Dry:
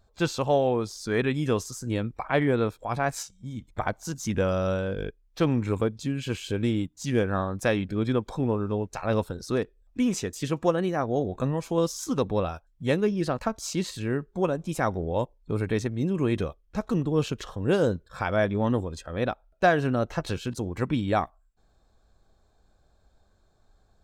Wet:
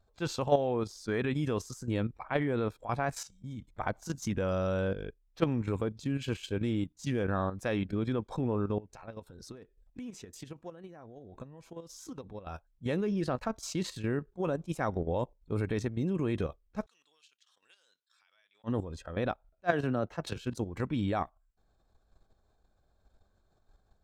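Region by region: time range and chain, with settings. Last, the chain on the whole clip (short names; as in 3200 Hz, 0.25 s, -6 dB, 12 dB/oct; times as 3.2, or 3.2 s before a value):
8.78–12.47 notch 1200 Hz, Q 17 + compressor 5:1, threshold -39 dBFS
16.86–18.64 Butterworth band-pass 5900 Hz, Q 0.72 + compressor 4:1, threshold -59 dBFS
19.72–20.36 HPF 95 Hz 6 dB/oct + three-band expander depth 70%
whole clip: high shelf 4500 Hz -4.5 dB; level quantiser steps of 10 dB; attack slew limiter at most 570 dB/s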